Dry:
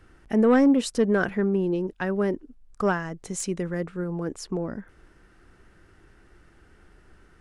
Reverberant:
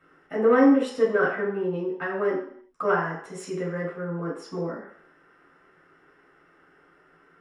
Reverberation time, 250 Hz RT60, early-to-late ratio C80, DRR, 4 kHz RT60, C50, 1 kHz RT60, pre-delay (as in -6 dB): 0.60 s, 0.55 s, 7.5 dB, -6.5 dB, 0.60 s, 4.5 dB, 0.60 s, 3 ms